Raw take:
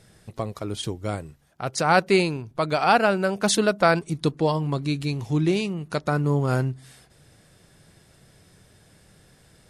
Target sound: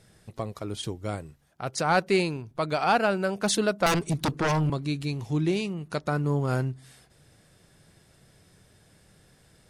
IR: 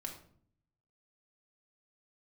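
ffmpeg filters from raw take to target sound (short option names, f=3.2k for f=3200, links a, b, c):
-filter_complex "[0:a]acontrast=40,asettb=1/sr,asplit=3[a][b][c];[a]atrim=end=3.864[d];[b]atrim=start=3.86:end=4.7,asetpts=PTS-STARTPTS,afade=t=in:d=0.004:c=qsin,afade=t=out:st=0.836:d=0.004:c=qsin,aeval=exprs='0.708*(cos(1*acos(clip(val(0)/0.708,-1,1)))-cos(1*PI/2))+0.355*(cos(3*acos(clip(val(0)/0.708,-1,1)))-cos(3*PI/2))+0.2*(cos(7*acos(clip(val(0)/0.708,-1,1)))-cos(7*PI/2))':c=same[e];[c]atrim=start=4.696[f];[d][e]acrossfade=d=0.004:c1=hsin:c2=qsin[g];[g][f]acrossfade=d=0.004:c1=qsin:c2=hsin,volume=-9dB"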